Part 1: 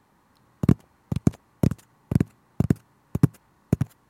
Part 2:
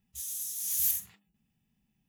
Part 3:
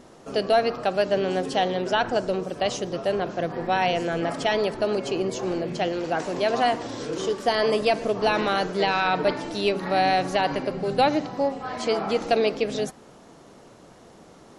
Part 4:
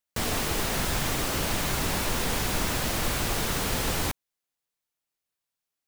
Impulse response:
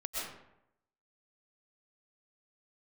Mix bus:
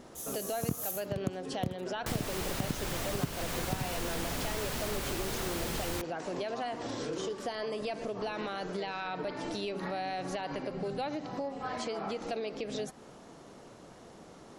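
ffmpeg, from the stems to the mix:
-filter_complex "[0:a]volume=0.501[s0];[1:a]volume=0.668[s1];[2:a]alimiter=limit=0.0794:level=0:latency=1:release=197,volume=0.75[s2];[3:a]adelay=1900,volume=0.668[s3];[s0][s1][s2][s3]amix=inputs=4:normalize=0,acompressor=threshold=0.0224:ratio=2.5"

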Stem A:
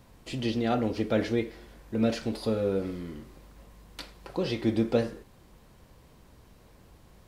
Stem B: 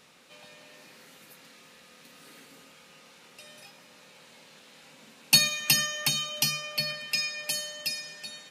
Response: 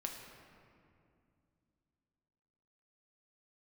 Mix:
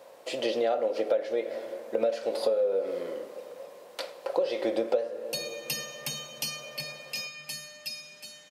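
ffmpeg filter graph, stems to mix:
-filter_complex "[0:a]highpass=f=550:t=q:w=5.9,volume=1.19,asplit=2[s0][s1];[s1]volume=0.316[s2];[1:a]volume=0.282,afade=t=in:st=5.37:d=0.6:silence=0.398107,asplit=3[s3][s4][s5];[s4]volume=0.668[s6];[s5]volume=0.501[s7];[2:a]atrim=start_sample=2205[s8];[s2][s6]amix=inputs=2:normalize=0[s9];[s9][s8]afir=irnorm=-1:irlink=0[s10];[s7]aecho=0:1:734:1[s11];[s0][s3][s10][s11]amix=inputs=4:normalize=0,acompressor=threshold=0.0708:ratio=12"

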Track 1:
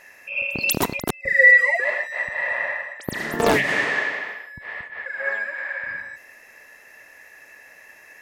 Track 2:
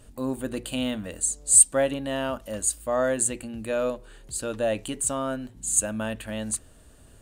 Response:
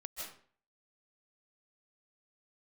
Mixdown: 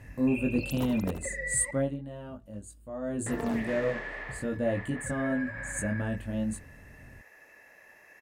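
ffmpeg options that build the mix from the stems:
-filter_complex "[0:a]lowpass=f=3200:p=1,aemphasis=mode=production:type=50kf,acompressor=threshold=0.0447:ratio=6,volume=0.376,asplit=3[s0][s1][s2];[s0]atrim=end=1.71,asetpts=PTS-STARTPTS,afade=t=out:st=1.706:d=0.004:c=hsin[s3];[s1]atrim=start=1.71:end=3.26,asetpts=PTS-STARTPTS,volume=0[s4];[s2]atrim=start=3.26,asetpts=PTS-STARTPTS,afade=t=in:d=0.004:c=hsin[s5];[s3][s4][s5]concat=n=3:v=0:a=1,asplit=2[s6][s7];[s7]volume=0.355[s8];[1:a]equalizer=f=130:t=o:w=2.6:g=13,flanger=delay=19.5:depth=2.7:speed=0.37,volume=1.58,afade=t=out:st=1.63:d=0.35:silence=0.266073,afade=t=in:st=3.01:d=0.23:silence=0.316228[s9];[s8]aecho=0:1:76|152|228|304|380:1|0.38|0.144|0.0549|0.0209[s10];[s6][s9][s10]amix=inputs=3:normalize=0,tiltshelf=f=1500:g=4.5"

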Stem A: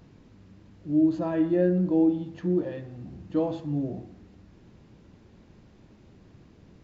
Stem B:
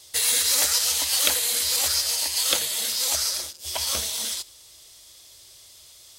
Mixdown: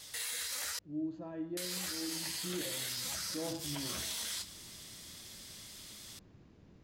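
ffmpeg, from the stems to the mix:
-filter_complex "[0:a]volume=0.473,afade=t=in:st=1.99:d=0.3:silence=0.334965[s0];[1:a]equalizer=f=1700:t=o:w=1.2:g=8,acompressor=threshold=0.0355:ratio=3,flanger=delay=6.4:depth=8.3:regen=-53:speed=0.58:shape=triangular,volume=1.19,asplit=3[s1][s2][s3];[s1]atrim=end=0.79,asetpts=PTS-STARTPTS,afade=t=out:st=0.786:d=0.004:c=hsin[s4];[s2]atrim=start=0.79:end=1.57,asetpts=PTS-STARTPTS,volume=0[s5];[s3]atrim=start=1.57,asetpts=PTS-STARTPTS,afade=t=in:d=0.004:c=hsin[s6];[s4][s5][s6]concat=n=3:v=0:a=1[s7];[s0][s7]amix=inputs=2:normalize=0,alimiter=level_in=1.88:limit=0.0631:level=0:latency=1:release=18,volume=0.531"

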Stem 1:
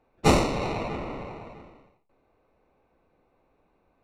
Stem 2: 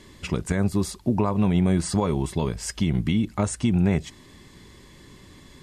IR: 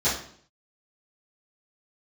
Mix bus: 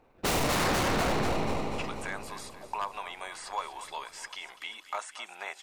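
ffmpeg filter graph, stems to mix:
-filter_complex "[0:a]aeval=exprs='if(lt(val(0),0),0.447*val(0),val(0))':c=same,volume=1.06,asplit=2[s0][s1];[s1]volume=0.631[s2];[1:a]highpass=f=780:w=0.5412,highpass=f=780:w=1.3066,acrossover=split=3100[s3][s4];[s4]acompressor=threshold=0.00794:ratio=4:attack=1:release=60[s5];[s3][s5]amix=inputs=2:normalize=0,adelay=1550,volume=0.355,asplit=2[s6][s7];[s7]volume=0.188[s8];[s2][s8]amix=inputs=2:normalize=0,aecho=0:1:243|486|729|972|1215|1458|1701|1944|2187:1|0.57|0.325|0.185|0.106|0.0602|0.0343|0.0195|0.0111[s9];[s0][s6][s9]amix=inputs=3:normalize=0,acontrast=88,aeval=exprs='0.0794*(abs(mod(val(0)/0.0794+3,4)-2)-1)':c=same"

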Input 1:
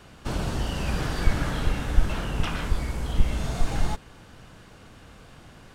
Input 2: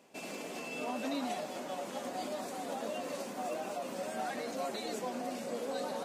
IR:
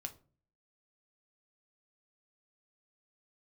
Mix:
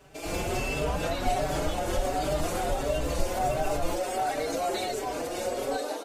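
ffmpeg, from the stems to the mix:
-filter_complex "[0:a]lowpass=2700,acompressor=threshold=0.02:ratio=2.5,volume=0.376,asplit=2[s0][s1];[s1]volume=0.596[s2];[1:a]lowshelf=f=240:t=q:w=3:g=-11.5,bandreject=f=60:t=h:w=6,bandreject=f=120:t=h:w=6,bandreject=f=180:t=h:w=6,bandreject=f=240:t=h:w=6,bandreject=f=300:t=h:w=6,bandreject=f=360:t=h:w=6,bandreject=f=420:t=h:w=6,bandreject=f=480:t=h:w=6,bandreject=f=540:t=h:w=6,alimiter=level_in=2.99:limit=0.0631:level=0:latency=1:release=212,volume=0.335,volume=1.26,asplit=2[s3][s4];[s4]volume=0.841[s5];[2:a]atrim=start_sample=2205[s6];[s2][s5]amix=inputs=2:normalize=0[s7];[s7][s6]afir=irnorm=-1:irlink=0[s8];[s0][s3][s8]amix=inputs=3:normalize=0,highshelf=f=6100:g=4,dynaudnorm=f=180:g=3:m=2.99,asplit=2[s9][s10];[s10]adelay=4.8,afreqshift=1.4[s11];[s9][s11]amix=inputs=2:normalize=1"

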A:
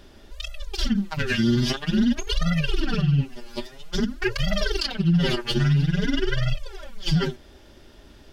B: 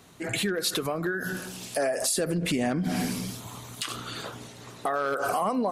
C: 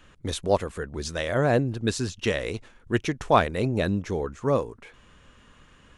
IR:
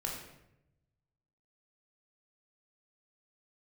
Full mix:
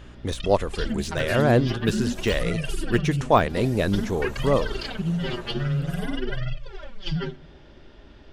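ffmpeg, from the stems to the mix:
-filter_complex "[0:a]lowpass=3500,acompressor=threshold=0.0355:ratio=2,volume=1,asplit=2[s0][s1];[s1]volume=0.0944[s2];[1:a]equalizer=f=560:w=0.62:g=14,acrossover=split=230|3000[s3][s4][s5];[s4]acompressor=threshold=0.0224:ratio=6[s6];[s3][s6][s5]amix=inputs=3:normalize=0,alimiter=level_in=1.12:limit=0.0631:level=0:latency=1:release=239,volume=0.891,adelay=650,volume=0.501[s7];[2:a]deesser=0.75,aeval=exprs='val(0)+0.00501*(sin(2*PI*60*n/s)+sin(2*PI*2*60*n/s)/2+sin(2*PI*3*60*n/s)/3+sin(2*PI*4*60*n/s)/4+sin(2*PI*5*60*n/s)/5)':c=same,volume=1.26[s8];[3:a]atrim=start_sample=2205[s9];[s2][s9]afir=irnorm=-1:irlink=0[s10];[s0][s7][s8][s10]amix=inputs=4:normalize=0"

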